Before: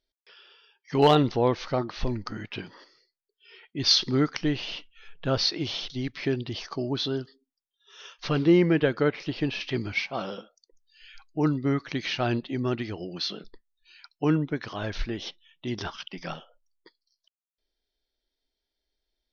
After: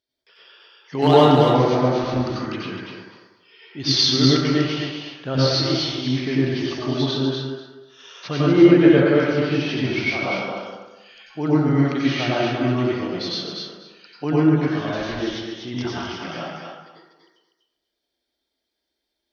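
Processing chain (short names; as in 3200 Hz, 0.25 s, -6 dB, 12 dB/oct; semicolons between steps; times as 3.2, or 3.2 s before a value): HPF 97 Hz; thinning echo 0.244 s, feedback 18%, high-pass 420 Hz, level -4.5 dB; plate-style reverb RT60 1 s, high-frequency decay 0.45×, pre-delay 80 ms, DRR -6.5 dB; gain -1.5 dB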